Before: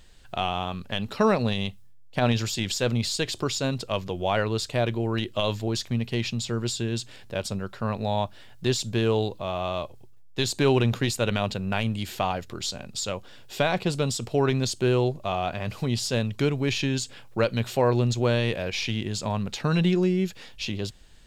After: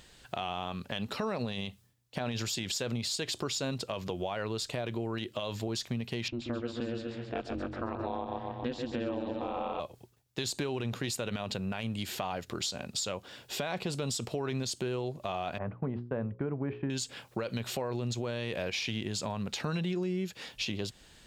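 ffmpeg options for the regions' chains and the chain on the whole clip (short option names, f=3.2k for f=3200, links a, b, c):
-filter_complex "[0:a]asettb=1/sr,asplit=3[a][b][c];[a]atrim=end=6.284[d];[b]atrim=start=6.28:end=9.8,asetpts=PTS-STARTPTS,afade=t=in:d=0.004:c=qsin,afade=t=out:st=3.516:d=0.004:c=qsin,lowpass=2.2k,aecho=1:1:135|270|405|540|675|810|945:0.447|0.259|0.15|0.0872|0.0505|0.0293|0.017,atrim=end_sample=155232,aeval=exprs='val(0)*sin(2*PI*120*n/s)':c=same[e];[c]atrim=start=9.796[f];[d][e]acrossfade=d=0.004:c1=hsin:c2=qsin[g];[g][f]acrossfade=d=0.004:c1=qsin:c2=hsin,asettb=1/sr,asplit=3[h][i][j];[h]atrim=end=15.584[k];[i]atrim=start=15.58:end=16.9,asetpts=PTS-STARTPTS,afade=t=in:d=0.004:c=qsin,afade=t=out:st=1.316:d=0.004:c=qsin,lowpass=f=1.5k:w=0.5412,lowpass=f=1.5k:w=1.3066,agate=range=-33dB:threshold=-33dB:ratio=3:release=100:detection=peak,bandreject=f=60:t=h:w=6,bandreject=f=120:t=h:w=6,bandreject=f=180:t=h:w=6,bandreject=f=240:t=h:w=6,bandreject=f=300:t=h:w=6,bandreject=f=360:t=h:w=6,bandreject=f=420:t=h:w=6,bandreject=f=480:t=h:w=6,bandreject=f=540:t=h:w=6[l];[j]atrim=start=16.896[m];[k][l]acrossfade=d=0.004:c1=hsin:c2=qsin[n];[n][m]acrossfade=d=0.004:c1=qsin:c2=hsin,highpass=f=130:p=1,alimiter=limit=-19.5dB:level=0:latency=1:release=59,acompressor=threshold=-35dB:ratio=3,volume=2.5dB"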